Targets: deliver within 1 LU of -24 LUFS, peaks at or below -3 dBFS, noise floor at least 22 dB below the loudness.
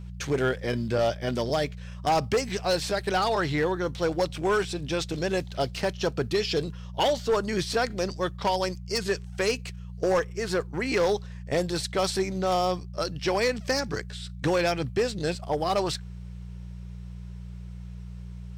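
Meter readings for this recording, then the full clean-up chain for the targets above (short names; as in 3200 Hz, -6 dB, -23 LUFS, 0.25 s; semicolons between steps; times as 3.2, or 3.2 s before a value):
clipped 1.1%; flat tops at -18.5 dBFS; hum 60 Hz; harmonics up to 180 Hz; hum level -37 dBFS; loudness -27.5 LUFS; peak -18.5 dBFS; loudness target -24.0 LUFS
-> clip repair -18.5 dBFS; de-hum 60 Hz, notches 3; gain +3.5 dB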